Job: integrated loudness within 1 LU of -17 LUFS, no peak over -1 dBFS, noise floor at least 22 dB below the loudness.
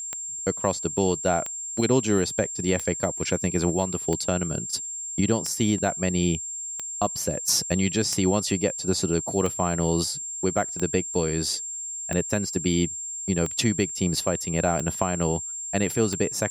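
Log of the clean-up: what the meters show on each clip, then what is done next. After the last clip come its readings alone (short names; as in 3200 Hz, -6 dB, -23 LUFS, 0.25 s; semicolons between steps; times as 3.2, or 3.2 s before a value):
clicks 13; steady tone 7400 Hz; tone level -31 dBFS; loudness -25.0 LUFS; peak -6.5 dBFS; loudness target -17.0 LUFS
-> de-click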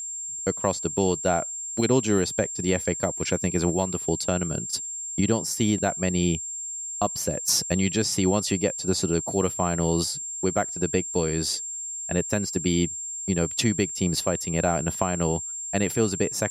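clicks 0; steady tone 7400 Hz; tone level -31 dBFS
-> notch 7400 Hz, Q 30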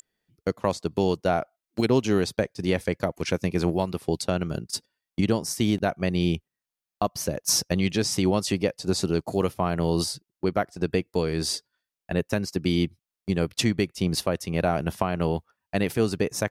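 steady tone none; loudness -26.5 LUFS; peak -6.5 dBFS; loudness target -17.0 LUFS
-> gain +9.5 dB; limiter -1 dBFS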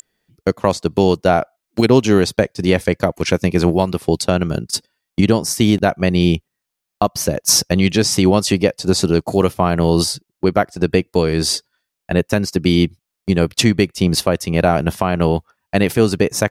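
loudness -17.0 LUFS; peak -1.0 dBFS; noise floor -81 dBFS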